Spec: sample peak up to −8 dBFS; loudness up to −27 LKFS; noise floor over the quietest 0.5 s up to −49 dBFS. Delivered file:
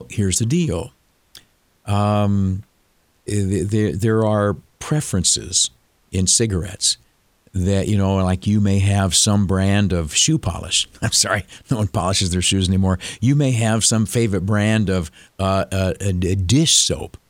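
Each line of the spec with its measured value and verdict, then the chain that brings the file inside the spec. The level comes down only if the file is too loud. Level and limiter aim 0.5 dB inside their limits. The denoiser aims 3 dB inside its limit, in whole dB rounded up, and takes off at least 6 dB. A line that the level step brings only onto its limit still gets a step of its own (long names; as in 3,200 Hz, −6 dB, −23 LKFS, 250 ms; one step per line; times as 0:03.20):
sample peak −2.0 dBFS: out of spec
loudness −18.0 LKFS: out of spec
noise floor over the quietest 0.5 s −61 dBFS: in spec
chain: level −9.5 dB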